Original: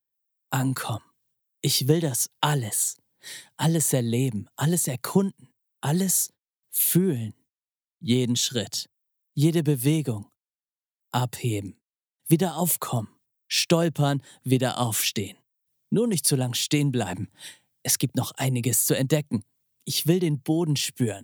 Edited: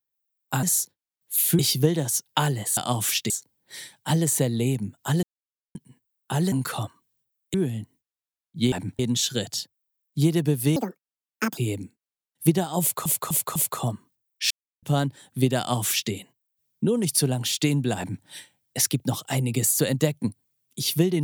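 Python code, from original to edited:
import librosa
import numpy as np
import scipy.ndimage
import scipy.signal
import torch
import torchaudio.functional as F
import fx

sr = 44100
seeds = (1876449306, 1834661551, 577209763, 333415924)

y = fx.edit(x, sr, fx.swap(start_s=0.63, length_s=1.02, other_s=6.05, other_length_s=0.96),
    fx.silence(start_s=4.76, length_s=0.52),
    fx.speed_span(start_s=9.96, length_s=1.46, speed=1.79),
    fx.repeat(start_s=12.65, length_s=0.25, count=4),
    fx.silence(start_s=13.6, length_s=0.32),
    fx.duplicate(start_s=14.68, length_s=0.53, to_s=2.83),
    fx.duplicate(start_s=17.07, length_s=0.27, to_s=8.19), tone=tone)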